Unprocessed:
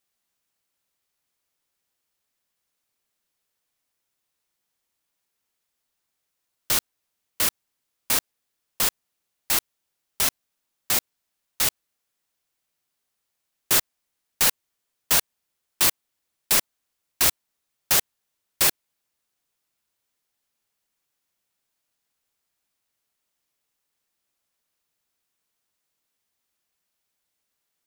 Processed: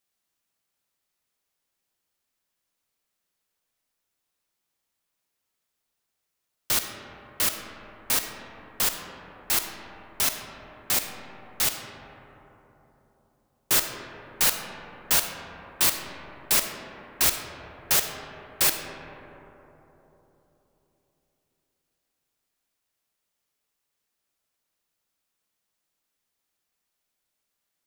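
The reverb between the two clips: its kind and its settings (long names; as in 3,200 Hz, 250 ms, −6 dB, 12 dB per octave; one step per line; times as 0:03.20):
comb and all-pass reverb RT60 3.8 s, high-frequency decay 0.3×, pre-delay 10 ms, DRR 5 dB
level −2 dB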